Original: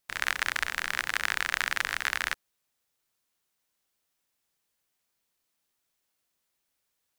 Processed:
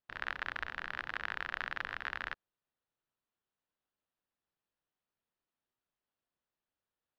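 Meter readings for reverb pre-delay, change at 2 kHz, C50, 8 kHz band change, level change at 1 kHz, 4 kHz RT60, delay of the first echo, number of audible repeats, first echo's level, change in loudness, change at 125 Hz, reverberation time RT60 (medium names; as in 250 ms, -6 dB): no reverb, -9.5 dB, no reverb, under -25 dB, -7.0 dB, no reverb, no echo, no echo, no echo, -10.0 dB, -5.0 dB, no reverb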